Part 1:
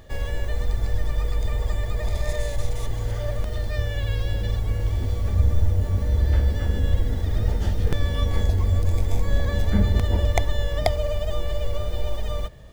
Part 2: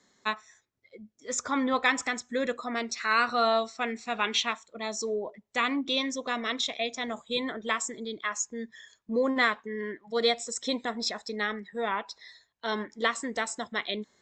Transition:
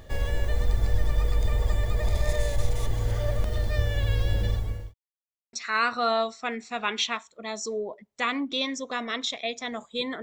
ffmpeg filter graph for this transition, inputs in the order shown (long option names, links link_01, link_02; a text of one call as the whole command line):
ffmpeg -i cue0.wav -i cue1.wav -filter_complex "[0:a]apad=whole_dur=10.22,atrim=end=10.22,asplit=2[link_01][link_02];[link_01]atrim=end=4.94,asetpts=PTS-STARTPTS,afade=type=out:start_time=4.43:duration=0.51[link_03];[link_02]atrim=start=4.94:end=5.53,asetpts=PTS-STARTPTS,volume=0[link_04];[1:a]atrim=start=2.89:end=7.58,asetpts=PTS-STARTPTS,afade=type=in:duration=0.004:curve=hsin[link_05];[link_03][link_04][link_05]concat=n=3:v=0:a=1" out.wav